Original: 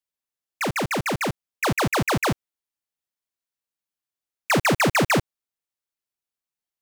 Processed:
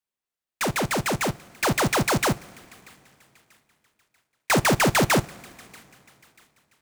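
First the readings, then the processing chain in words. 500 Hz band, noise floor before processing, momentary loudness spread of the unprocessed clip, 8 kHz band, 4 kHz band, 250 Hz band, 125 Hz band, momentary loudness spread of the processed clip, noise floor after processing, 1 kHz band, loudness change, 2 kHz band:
0.0 dB, under -85 dBFS, 8 LU, +3.0 dB, +1.0 dB, 0.0 dB, +0.5 dB, 9 LU, under -85 dBFS, 0.0 dB, 0.0 dB, -1.0 dB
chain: on a send: feedback echo behind a high-pass 638 ms, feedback 38%, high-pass 1.9 kHz, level -22 dB; on the sum: two-slope reverb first 0.26 s, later 3 s, from -18 dB, DRR 14 dB; delay time shaken by noise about 4.9 kHz, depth 0.047 ms

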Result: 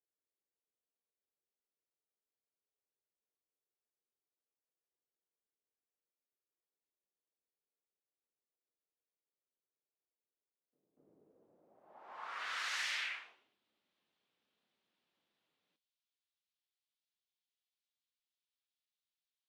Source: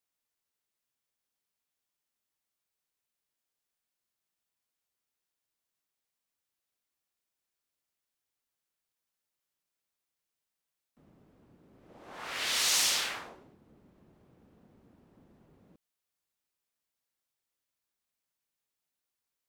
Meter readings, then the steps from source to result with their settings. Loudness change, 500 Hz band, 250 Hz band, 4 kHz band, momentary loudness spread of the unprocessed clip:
-11.0 dB, -13.5 dB, -19.0 dB, -13.0 dB, 17 LU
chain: flange 0.15 Hz, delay 2.6 ms, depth 5.9 ms, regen -70%; pre-echo 241 ms -15 dB; band-pass sweep 430 Hz -> 3.5 kHz, 11.22–13.61 s; trim +4 dB

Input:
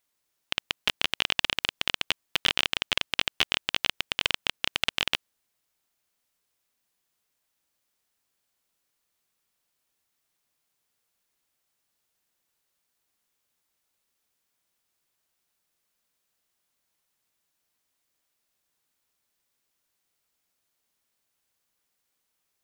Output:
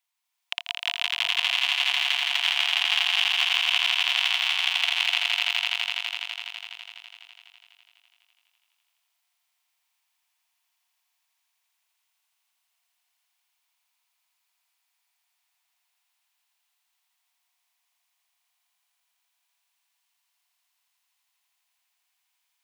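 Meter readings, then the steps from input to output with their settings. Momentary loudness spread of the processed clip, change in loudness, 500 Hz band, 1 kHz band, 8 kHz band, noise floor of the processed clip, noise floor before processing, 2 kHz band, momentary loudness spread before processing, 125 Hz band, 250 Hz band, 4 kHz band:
13 LU, +5.0 dB, -6.0 dB, +3.0 dB, +2.0 dB, -77 dBFS, -79 dBFS, +6.0 dB, 5 LU, under -40 dB, under -40 dB, +5.5 dB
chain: rippled Chebyshev high-pass 680 Hz, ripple 6 dB; echo with a slow build-up 83 ms, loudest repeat 5, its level -4 dB

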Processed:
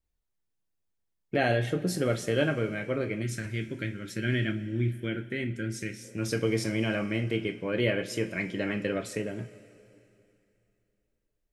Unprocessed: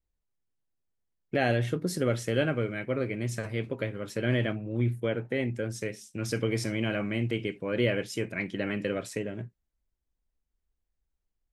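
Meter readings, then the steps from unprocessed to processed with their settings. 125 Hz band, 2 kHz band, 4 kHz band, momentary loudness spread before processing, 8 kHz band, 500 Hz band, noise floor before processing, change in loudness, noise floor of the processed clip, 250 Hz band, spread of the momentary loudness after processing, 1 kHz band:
-0.5 dB, +1.0 dB, +1.0 dB, 7 LU, +1.0 dB, 0.0 dB, -83 dBFS, 0.0 dB, -79 dBFS, +0.5 dB, 8 LU, +0.5 dB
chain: two-slope reverb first 0.22 s, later 2.9 s, from -19 dB, DRR 6.5 dB; time-frequency box 3.22–6.03 s, 400–1300 Hz -12 dB

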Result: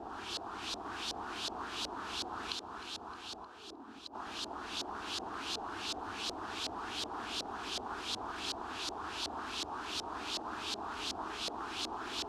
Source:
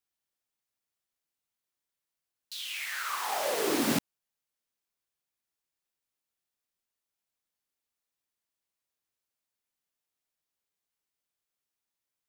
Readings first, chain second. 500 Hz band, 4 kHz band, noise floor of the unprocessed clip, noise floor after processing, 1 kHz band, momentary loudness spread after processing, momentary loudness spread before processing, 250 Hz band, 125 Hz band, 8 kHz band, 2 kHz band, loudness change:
-6.0 dB, +5.0 dB, under -85 dBFS, -50 dBFS, +2.0 dB, 5 LU, 10 LU, -6.5 dB, -4.5 dB, -3.0 dB, -2.0 dB, -9.0 dB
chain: one-bit delta coder 64 kbps, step -42.5 dBFS; high-pass 64 Hz; peaking EQ 1.2 kHz -3 dB 1.5 oct; static phaser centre 550 Hz, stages 6; inverted gate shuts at -36 dBFS, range -39 dB; short-mantissa float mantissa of 2-bit; on a send: multi-head delay 309 ms, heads all three, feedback 42%, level -8 dB; on the sum: LFO low-pass saw up 2.7 Hz 580–4300 Hz; loudspeaker Doppler distortion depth 0.22 ms; trim +16 dB

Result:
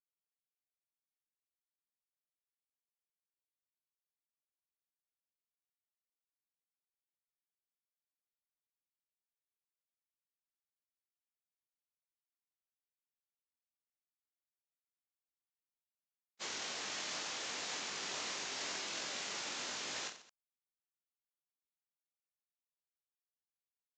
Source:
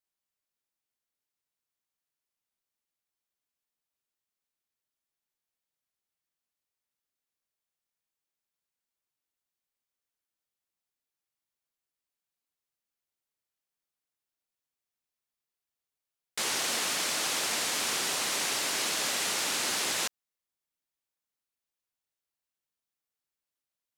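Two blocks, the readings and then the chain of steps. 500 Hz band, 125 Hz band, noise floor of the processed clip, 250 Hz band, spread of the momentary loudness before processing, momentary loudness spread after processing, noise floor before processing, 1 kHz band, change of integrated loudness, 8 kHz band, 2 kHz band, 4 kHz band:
-10.5 dB, -10.5 dB, under -85 dBFS, -10.5 dB, 3 LU, 3 LU, under -85 dBFS, -10.5 dB, -11.5 dB, -13.0 dB, -10.5 dB, -10.5 dB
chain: gate -28 dBFS, range -53 dB; in parallel at +3 dB: compressor with a negative ratio -44 dBFS, ratio -0.5; on the sum: reverse bouncing-ball echo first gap 20 ms, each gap 1.4×, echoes 5; resampled via 16 kHz; trim -7.5 dB

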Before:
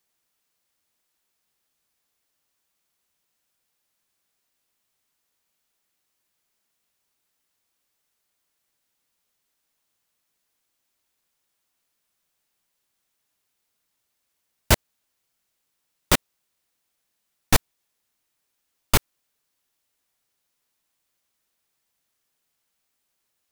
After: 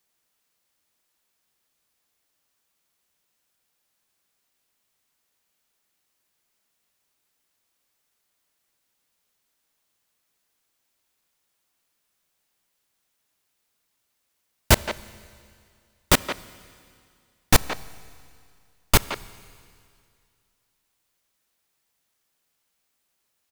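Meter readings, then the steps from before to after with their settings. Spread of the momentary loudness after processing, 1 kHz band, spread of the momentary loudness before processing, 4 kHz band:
15 LU, +2.0 dB, 1 LU, +2.0 dB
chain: speakerphone echo 170 ms, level -9 dB; Schroeder reverb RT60 2.3 s, combs from 29 ms, DRR 19 dB; trim +1.5 dB

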